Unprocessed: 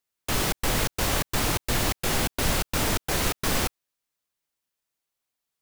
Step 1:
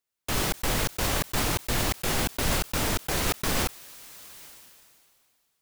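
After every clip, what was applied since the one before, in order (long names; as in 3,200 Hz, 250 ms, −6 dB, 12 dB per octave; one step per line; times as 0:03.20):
level that may fall only so fast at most 26 dB per second
level −2 dB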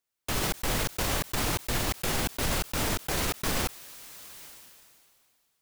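brickwall limiter −18 dBFS, peak gain reduction 5 dB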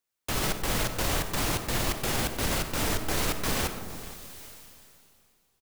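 single-tap delay 467 ms −18 dB
comb and all-pass reverb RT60 2 s, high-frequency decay 0.25×, pre-delay 10 ms, DRR 7.5 dB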